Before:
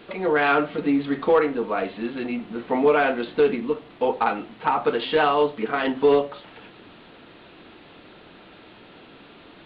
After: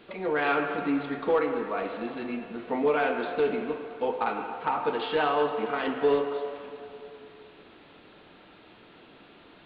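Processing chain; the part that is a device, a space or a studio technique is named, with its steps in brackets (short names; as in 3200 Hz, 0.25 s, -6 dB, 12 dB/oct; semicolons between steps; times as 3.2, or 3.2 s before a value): filtered reverb send (on a send: HPF 410 Hz 12 dB/oct + LPF 3100 Hz + reverb RT60 2.8 s, pre-delay 41 ms, DRR 5 dB); on the sum: gain -6.5 dB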